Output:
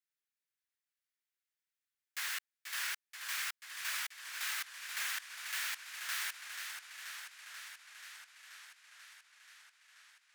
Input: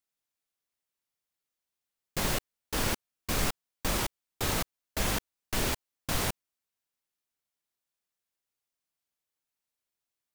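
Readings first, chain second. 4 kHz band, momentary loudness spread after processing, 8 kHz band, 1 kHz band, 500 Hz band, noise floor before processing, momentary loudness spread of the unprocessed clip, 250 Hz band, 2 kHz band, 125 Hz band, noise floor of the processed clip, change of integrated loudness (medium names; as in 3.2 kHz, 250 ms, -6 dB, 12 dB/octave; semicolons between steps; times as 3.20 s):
-4.5 dB, 19 LU, -5.5 dB, -11.0 dB, under -30 dB, under -85 dBFS, 6 LU, under -40 dB, -0.5 dB, under -40 dB, under -85 dBFS, -7.0 dB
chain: ladder high-pass 1.4 kHz, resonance 45%; modulated delay 484 ms, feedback 75%, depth 96 cents, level -7 dB; trim +1.5 dB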